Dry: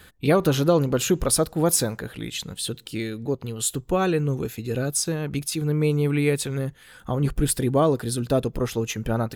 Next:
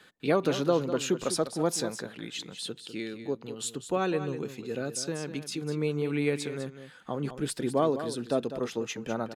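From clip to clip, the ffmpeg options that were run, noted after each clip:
-filter_complex "[0:a]acrossover=split=160 8000:gain=0.0631 1 0.141[s0][s1][s2];[s0][s1][s2]amix=inputs=3:normalize=0,aecho=1:1:200:0.282,volume=0.531"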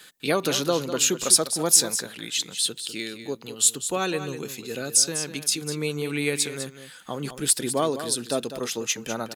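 -af "crystalizer=i=6:c=0"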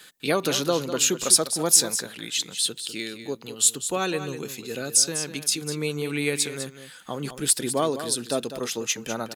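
-af anull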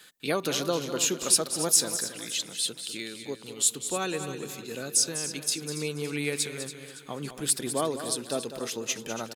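-af "aecho=1:1:281|562|843|1124|1405:0.237|0.111|0.0524|0.0246|0.0116,volume=0.596"

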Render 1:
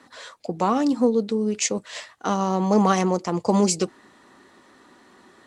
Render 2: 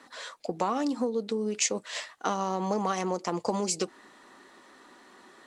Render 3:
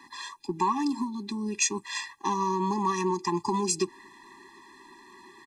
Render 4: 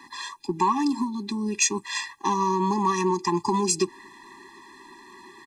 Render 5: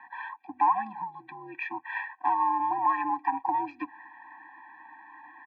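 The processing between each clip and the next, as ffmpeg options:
-af "acompressor=threshold=0.0794:ratio=6,equalizer=f=76:t=o:w=2.7:g=-12.5"
-af "aecho=1:1:2:0.36,afftfilt=real='re*eq(mod(floor(b*sr/1024/400),2),0)':imag='im*eq(mod(floor(b*sr/1024/400),2),0)':win_size=1024:overlap=0.75,volume=1.68"
-af "acontrast=79,volume=0.708"
-af "highpass=f=530:t=q:w=0.5412,highpass=f=530:t=q:w=1.307,lowpass=f=2300:t=q:w=0.5176,lowpass=f=2300:t=q:w=0.7071,lowpass=f=2300:t=q:w=1.932,afreqshift=-71"

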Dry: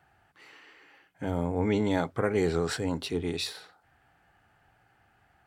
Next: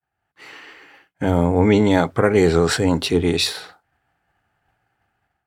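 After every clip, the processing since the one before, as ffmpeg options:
-af "agate=range=0.0224:threshold=0.00224:ratio=3:detection=peak,dynaudnorm=f=120:g=5:m=3.98,volume=1.12"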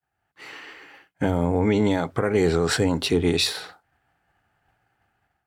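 -af "alimiter=limit=0.299:level=0:latency=1:release=230"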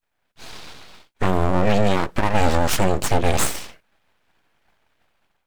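-af "aeval=exprs='abs(val(0))':c=same,volume=1.78"

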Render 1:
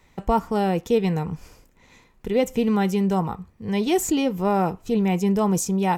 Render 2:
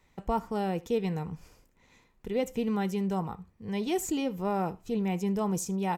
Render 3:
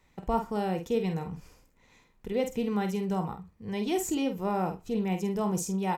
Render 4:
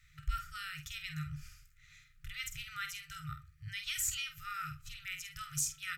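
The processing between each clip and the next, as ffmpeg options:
-af "aecho=1:1:77:0.0668,volume=0.376"
-filter_complex "[0:a]asplit=2[s0][s1];[s1]adelay=48,volume=0.422[s2];[s0][s2]amix=inputs=2:normalize=0"
-af "afftfilt=real='re*(1-between(b*sr/4096,160,1200))':imag='im*(1-between(b*sr/4096,160,1200))':win_size=4096:overlap=0.75,volume=1.33"

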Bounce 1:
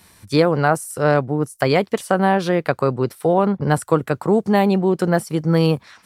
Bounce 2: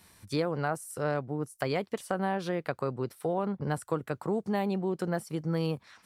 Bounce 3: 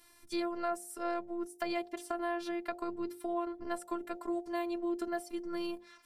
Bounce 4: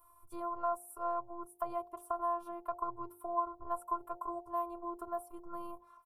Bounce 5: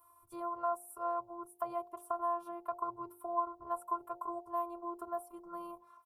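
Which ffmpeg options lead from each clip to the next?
-af "acompressor=threshold=0.0398:ratio=1.5,volume=0.398"
-af "afftfilt=real='hypot(re,im)*cos(PI*b)':imag='0':win_size=512:overlap=0.75,bandreject=f=50.1:t=h:w=4,bandreject=f=100.2:t=h:w=4,bandreject=f=150.3:t=h:w=4,bandreject=f=200.4:t=h:w=4,bandreject=f=250.5:t=h:w=4,bandreject=f=300.6:t=h:w=4,bandreject=f=350.7:t=h:w=4,bandreject=f=400.8:t=h:w=4,bandreject=f=450.9:t=h:w=4,bandreject=f=501:t=h:w=4,bandreject=f=551.1:t=h:w=4,bandreject=f=601.2:t=h:w=4,bandreject=f=651.3:t=h:w=4,bandreject=f=701.4:t=h:w=4,bandreject=f=751.5:t=h:w=4,bandreject=f=801.6:t=h:w=4,bandreject=f=851.7:t=h:w=4,bandreject=f=901.8:t=h:w=4"
-af "firequalizer=gain_entry='entry(120,0);entry(240,-20);entry(390,-9);entry(1100,9);entry(1800,-26);entry(2800,-21);entry(4400,-28);entry(11000,-2)':delay=0.05:min_phase=1,volume=1.12"
-af "highpass=f=110:p=1"

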